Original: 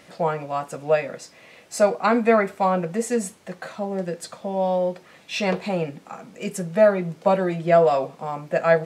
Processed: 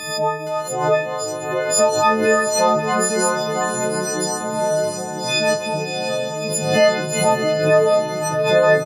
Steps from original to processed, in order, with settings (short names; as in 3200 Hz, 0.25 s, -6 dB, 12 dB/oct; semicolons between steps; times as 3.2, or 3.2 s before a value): frequency quantiser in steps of 6 st; doubler 34 ms -12 dB; echoes that change speed 0.466 s, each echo -3 st, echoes 2, each echo -6 dB; diffused feedback echo 0.669 s, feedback 46%, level -5.5 dB; backwards sustainer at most 57 dB/s; gain -1.5 dB